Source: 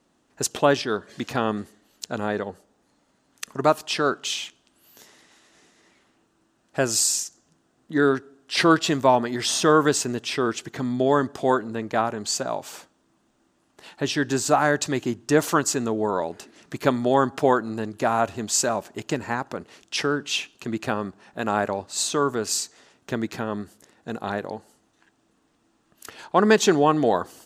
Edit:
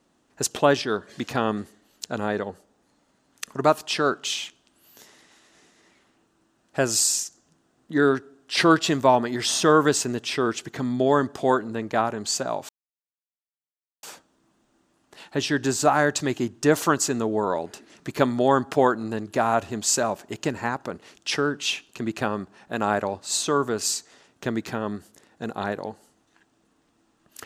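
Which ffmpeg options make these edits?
-filter_complex "[0:a]asplit=2[a][b];[a]atrim=end=12.69,asetpts=PTS-STARTPTS,afade=t=out:st=12.686:d=0.004:c=hsin,apad=pad_dur=1.34[c];[b]atrim=start=12.69,asetpts=PTS-STARTPTS,afade=t=in:d=0.004:c=hsin[d];[c][d]concat=n=2:v=0:a=1"

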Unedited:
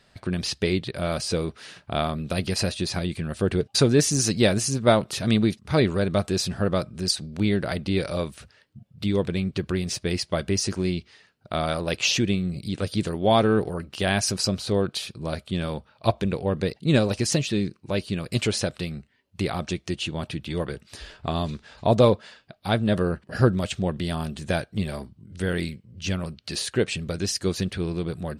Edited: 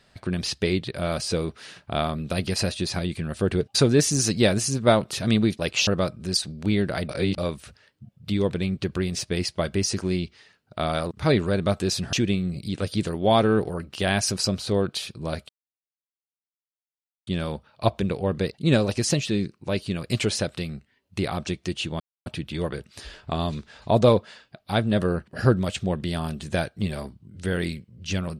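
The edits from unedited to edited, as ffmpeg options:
-filter_complex "[0:a]asplit=9[a][b][c][d][e][f][g][h][i];[a]atrim=end=5.592[j];[b]atrim=start=11.848:end=12.132[k];[c]atrim=start=6.608:end=7.832[l];[d]atrim=start=7.828:end=8.122,asetpts=PTS-STARTPTS,areverse[m];[e]atrim=start=8.118:end=11.852[n];[f]atrim=start=5.588:end=6.612[o];[g]atrim=start=12.128:end=15.49,asetpts=PTS-STARTPTS,afade=t=out:st=3.358:d=0.004:c=hsin,apad=pad_dur=1.78[p];[h]atrim=start=15.49:end=20.22,asetpts=PTS-STARTPTS,afade=t=in:d=0.004:c=hsin,afade=t=out:st=4.726:d=0.004:c=hsin,apad=pad_dur=0.26[q];[i]atrim=start=20.22,asetpts=PTS-STARTPTS,afade=t=in:d=0.004:c=hsin[r];[j][k]acrossfade=d=0.004:c1=hsin:c2=hsin[s];[s][l]acrossfade=d=0.004:c1=hsin:c2=hsin[t];[t][m]acrossfade=d=0.004:c1=hsin:c2=hsin[u];[u][n]acrossfade=d=0.004:c1=hsin:c2=hsin[v];[v][o]acrossfade=d=0.004:c1=hsin:c2=hsin[w];[p][q][r]concat=n=3:v=0:a=1[x];[w][x]acrossfade=d=0.004:c1=hsin:c2=hsin"

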